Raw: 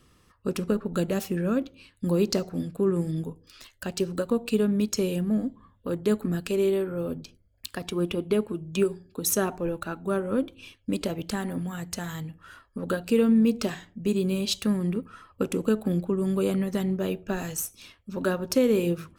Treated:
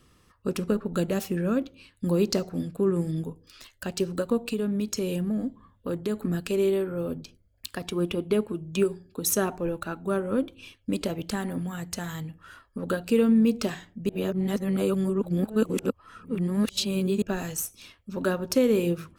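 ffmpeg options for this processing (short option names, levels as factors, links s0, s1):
-filter_complex "[0:a]asettb=1/sr,asplit=3[s0][s1][s2];[s0]atrim=end=4.424[s3];[s1]atrim=start=4.42:end=6.19,asetpts=PTS-STARTPTS,afade=t=in:d=0.004:c=qsin,afade=t=out:st=1.766:d=0.004:c=qsin,acompressor=threshold=0.0631:ratio=4:attack=3.2:release=140:knee=1:detection=peak[s4];[s2]atrim=start=6.186[s5];[s3][s4]acrossfade=d=0.004:c1=hsin:c2=qsin[s6];[s6][s5]acrossfade=d=0.004:c1=qsin:c2=hsin,asplit=3[s7][s8][s9];[s7]atrim=end=14.092[s10];[s8]atrim=start=14.088:end=17.222,asetpts=PTS-STARTPTS,areverse[s11];[s9]atrim=start=17.218[s12];[s10][s11]acrossfade=d=0.004:c1=hsin:c2=hsin[s13];[s13][s12]acrossfade=d=0.004:c1=hsin:c2=hsin"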